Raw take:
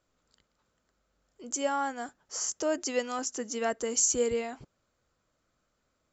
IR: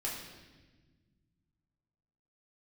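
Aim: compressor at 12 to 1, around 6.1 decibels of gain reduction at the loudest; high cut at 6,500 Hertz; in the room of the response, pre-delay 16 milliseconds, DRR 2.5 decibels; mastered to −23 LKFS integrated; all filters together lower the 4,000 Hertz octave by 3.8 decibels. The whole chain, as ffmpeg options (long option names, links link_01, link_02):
-filter_complex "[0:a]lowpass=6500,equalizer=frequency=4000:width_type=o:gain=-4.5,acompressor=threshold=-29dB:ratio=12,asplit=2[link_01][link_02];[1:a]atrim=start_sample=2205,adelay=16[link_03];[link_02][link_03]afir=irnorm=-1:irlink=0,volume=-5dB[link_04];[link_01][link_04]amix=inputs=2:normalize=0,volume=10.5dB"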